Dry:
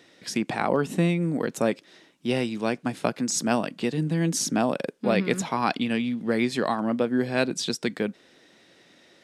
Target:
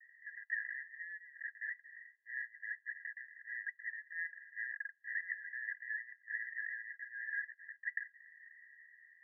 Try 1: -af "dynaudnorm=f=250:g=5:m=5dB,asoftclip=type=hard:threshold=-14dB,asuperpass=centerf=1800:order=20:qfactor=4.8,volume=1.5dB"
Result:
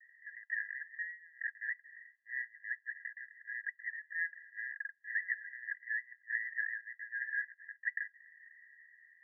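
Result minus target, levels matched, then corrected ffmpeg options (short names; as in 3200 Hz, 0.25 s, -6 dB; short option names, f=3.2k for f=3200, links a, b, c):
hard clip: distortion -7 dB
-af "dynaudnorm=f=250:g=5:m=5dB,asoftclip=type=hard:threshold=-20.5dB,asuperpass=centerf=1800:order=20:qfactor=4.8,volume=1.5dB"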